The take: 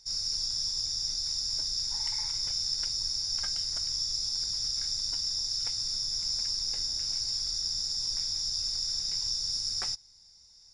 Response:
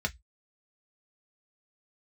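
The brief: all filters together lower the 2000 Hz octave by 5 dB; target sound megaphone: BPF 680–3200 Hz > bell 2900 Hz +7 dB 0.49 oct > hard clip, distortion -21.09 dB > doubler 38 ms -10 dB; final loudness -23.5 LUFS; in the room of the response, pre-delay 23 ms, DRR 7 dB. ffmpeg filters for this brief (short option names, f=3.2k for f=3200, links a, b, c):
-filter_complex "[0:a]equalizer=f=2k:t=o:g=-7.5,asplit=2[a][b];[1:a]atrim=start_sample=2205,adelay=23[c];[b][c]afir=irnorm=-1:irlink=0,volume=-13dB[d];[a][d]amix=inputs=2:normalize=0,highpass=680,lowpass=3.2k,equalizer=f=2.9k:t=o:w=0.49:g=7,asoftclip=type=hard:threshold=-35dB,asplit=2[e][f];[f]adelay=38,volume=-10dB[g];[e][g]amix=inputs=2:normalize=0,volume=14.5dB"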